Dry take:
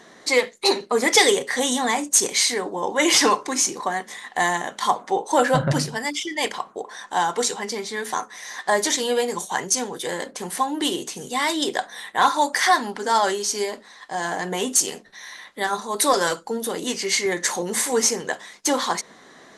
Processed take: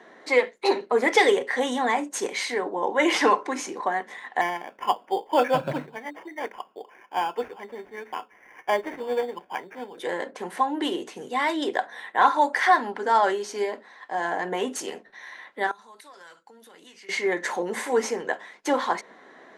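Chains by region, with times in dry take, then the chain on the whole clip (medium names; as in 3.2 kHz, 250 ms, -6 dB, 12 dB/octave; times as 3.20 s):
4.41–9.98 s: distance through air 230 m + sample-rate reducer 4 kHz + upward expansion, over -34 dBFS
15.71–17.09 s: compression 10:1, threshold -26 dBFS + amplifier tone stack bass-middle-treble 5-5-5
whole clip: three-band isolator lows -16 dB, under 230 Hz, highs -17 dB, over 2.7 kHz; band-stop 1.2 kHz, Q 12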